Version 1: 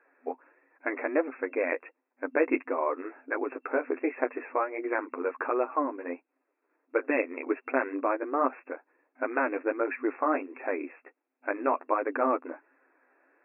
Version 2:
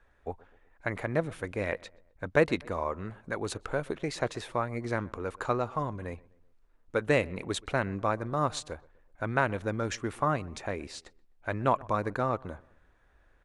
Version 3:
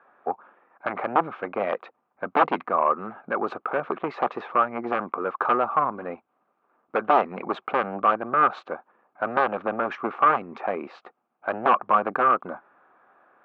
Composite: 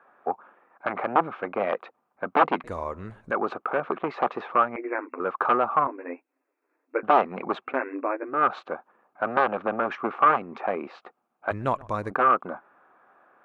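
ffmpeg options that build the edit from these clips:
-filter_complex "[1:a]asplit=2[a][b];[0:a]asplit=3[c][d][e];[2:a]asplit=6[f][g][h][i][j][k];[f]atrim=end=2.642[l];[a]atrim=start=2.638:end=3.312[m];[g]atrim=start=3.308:end=4.762[n];[c]atrim=start=4.758:end=5.202[o];[h]atrim=start=5.198:end=5.872[p];[d]atrim=start=5.868:end=7.032[q];[i]atrim=start=7.028:end=7.81[r];[e]atrim=start=7.57:end=8.5[s];[j]atrim=start=8.26:end=11.512[t];[b]atrim=start=11.508:end=12.112[u];[k]atrim=start=12.108[v];[l][m]acrossfade=d=0.004:c1=hsin:c2=hsin[w];[w][n]acrossfade=d=0.004:c1=hsin:c2=hsin[x];[x][o]acrossfade=d=0.004:c1=hsin:c2=hsin[y];[y][p]acrossfade=d=0.004:c1=hsin:c2=hsin[z];[z][q]acrossfade=d=0.004:c1=hsin:c2=hsin[aa];[aa][r]acrossfade=d=0.004:c1=hsin:c2=hsin[ab];[ab][s]acrossfade=d=0.24:c1=tri:c2=tri[ac];[ac][t]acrossfade=d=0.24:c1=tri:c2=tri[ad];[ad][u]acrossfade=d=0.004:c1=hsin:c2=hsin[ae];[ae][v]acrossfade=d=0.004:c1=hsin:c2=hsin"

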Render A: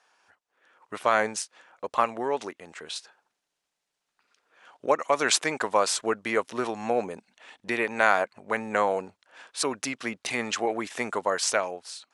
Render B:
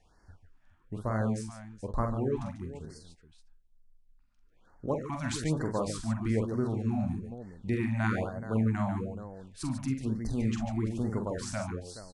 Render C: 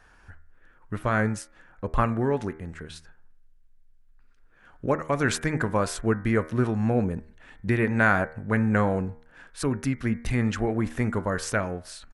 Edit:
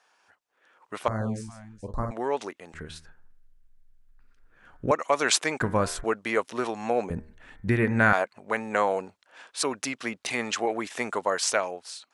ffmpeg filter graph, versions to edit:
-filter_complex "[2:a]asplit=3[a][b][c];[0:a]asplit=5[d][e][f][g][h];[d]atrim=end=1.082[i];[1:a]atrim=start=1.078:end=2.112[j];[e]atrim=start=2.108:end=2.742[k];[a]atrim=start=2.738:end=4.912[l];[f]atrim=start=4.908:end=5.612[m];[b]atrim=start=5.608:end=6.042[n];[g]atrim=start=6.038:end=7.102[o];[c]atrim=start=7.098:end=8.132[p];[h]atrim=start=8.128[q];[i][j]acrossfade=d=0.004:c1=hsin:c2=hsin[r];[r][k]acrossfade=d=0.004:c1=hsin:c2=hsin[s];[s][l]acrossfade=d=0.004:c1=hsin:c2=hsin[t];[t][m]acrossfade=d=0.004:c1=hsin:c2=hsin[u];[u][n]acrossfade=d=0.004:c1=hsin:c2=hsin[v];[v][o]acrossfade=d=0.004:c1=hsin:c2=hsin[w];[w][p]acrossfade=d=0.004:c1=hsin:c2=hsin[x];[x][q]acrossfade=d=0.004:c1=hsin:c2=hsin"

